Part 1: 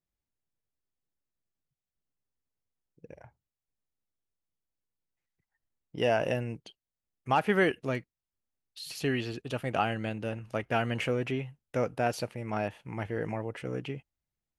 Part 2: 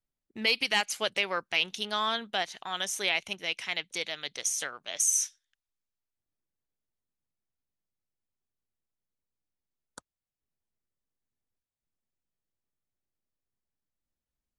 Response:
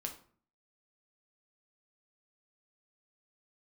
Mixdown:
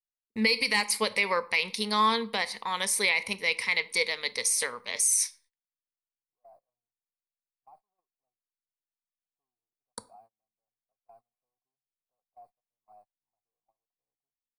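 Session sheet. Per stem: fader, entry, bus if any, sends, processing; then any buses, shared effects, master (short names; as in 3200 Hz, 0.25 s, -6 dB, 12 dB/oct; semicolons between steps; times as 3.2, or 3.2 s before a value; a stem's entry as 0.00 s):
-14.0 dB, 0.35 s, send -19.5 dB, soft clip -29 dBFS, distortion -7 dB; vocal tract filter a
+0.5 dB, 0.00 s, send -6.5 dB, ripple EQ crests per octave 0.92, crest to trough 14 dB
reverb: on, RT60 0.50 s, pre-delay 6 ms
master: gate -57 dBFS, range -28 dB; high shelf 7100 Hz +4.5 dB; limiter -14 dBFS, peak gain reduction 8.5 dB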